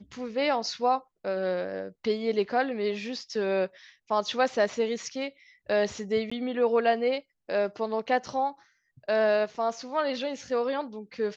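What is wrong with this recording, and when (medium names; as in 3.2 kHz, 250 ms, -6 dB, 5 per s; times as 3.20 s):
6.30–6.32 s: dropout 15 ms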